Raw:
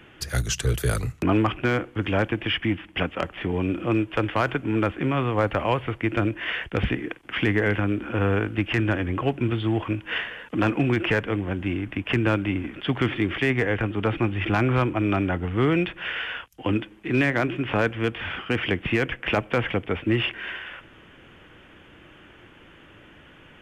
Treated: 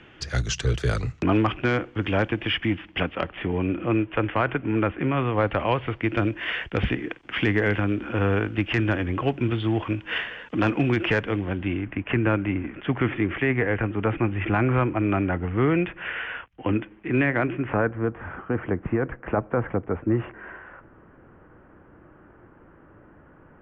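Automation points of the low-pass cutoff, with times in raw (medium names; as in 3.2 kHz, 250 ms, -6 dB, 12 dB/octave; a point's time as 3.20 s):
low-pass 24 dB/octave
2.79 s 6.3 kHz
3.64 s 2.9 kHz
5.04 s 2.9 kHz
6.33 s 6.6 kHz
11.36 s 6.6 kHz
11.92 s 2.5 kHz
17.47 s 2.5 kHz
18.00 s 1.4 kHz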